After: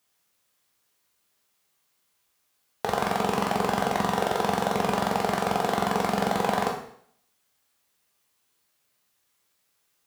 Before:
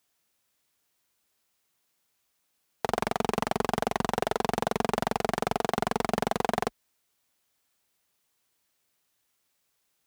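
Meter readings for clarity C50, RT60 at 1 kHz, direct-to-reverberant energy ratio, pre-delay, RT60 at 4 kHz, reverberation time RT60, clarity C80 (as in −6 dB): 5.5 dB, 0.60 s, −1.0 dB, 6 ms, 0.60 s, 0.60 s, 9.0 dB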